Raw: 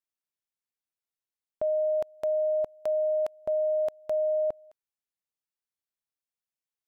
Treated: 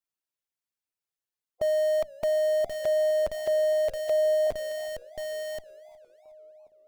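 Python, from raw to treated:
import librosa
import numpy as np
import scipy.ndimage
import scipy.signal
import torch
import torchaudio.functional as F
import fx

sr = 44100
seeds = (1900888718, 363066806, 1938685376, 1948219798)

p1 = fx.spec_quant(x, sr, step_db=15)
p2 = fx.hum_notches(p1, sr, base_hz=60, count=4)
p3 = fx.echo_filtered(p2, sr, ms=1081, feedback_pct=42, hz=890.0, wet_db=-15)
p4 = fx.schmitt(p3, sr, flips_db=-44.0)
p5 = p3 + (p4 * librosa.db_to_amplitude(-6.0))
p6 = fx.graphic_eq(p5, sr, hz=(250, 500, 1000), db=(-7, 6, -8), at=(3.88, 4.47))
y = fx.echo_warbled(p6, sr, ms=371, feedback_pct=43, rate_hz=2.8, cents=192, wet_db=-23.5)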